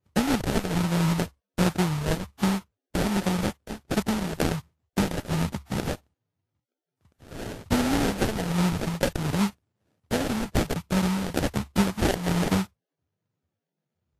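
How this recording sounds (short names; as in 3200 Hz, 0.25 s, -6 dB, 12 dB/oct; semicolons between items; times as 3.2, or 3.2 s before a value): phasing stages 2, 1.3 Hz, lowest notch 250–1100 Hz; aliases and images of a low sample rate 1100 Hz, jitter 20%; Vorbis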